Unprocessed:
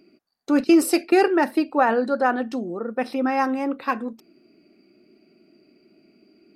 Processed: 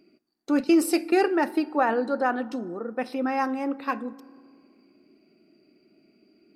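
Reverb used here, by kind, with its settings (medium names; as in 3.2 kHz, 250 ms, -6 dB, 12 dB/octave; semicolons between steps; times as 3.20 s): FDN reverb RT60 2 s, low-frequency decay 1.35×, high-frequency decay 0.45×, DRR 19 dB; trim -4 dB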